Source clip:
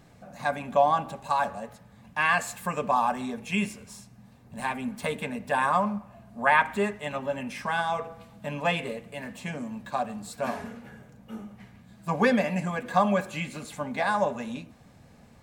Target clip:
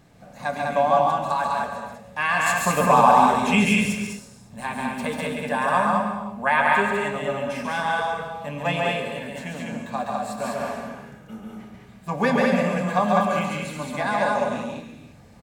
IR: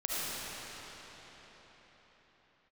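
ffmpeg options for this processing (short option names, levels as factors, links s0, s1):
-filter_complex "[0:a]asettb=1/sr,asplit=3[s0][s1][s2];[s0]atrim=end=2.464[s3];[s1]atrim=start=2.46:end=3.93,asetpts=PTS-STARTPTS,afade=t=in:d=0.004:c=qsin,afade=t=out:st=1.466:d=0.004:c=qsin,acontrast=88[s4];[s2]atrim=start=3.926[s5];[s3][s4]acrossfade=d=0.004:c1=hsin:c2=qsin[s6];[s6][s5]acrossfade=d=0.004:c1=qsin:c2=hsin,aecho=1:1:139.9|201.2:0.708|0.794,asplit=2[s7][s8];[1:a]atrim=start_sample=2205,afade=t=out:st=0.37:d=0.01,atrim=end_sample=16758,adelay=28[s9];[s8][s9]afir=irnorm=-1:irlink=0,volume=0.266[s10];[s7][s10]amix=inputs=2:normalize=0"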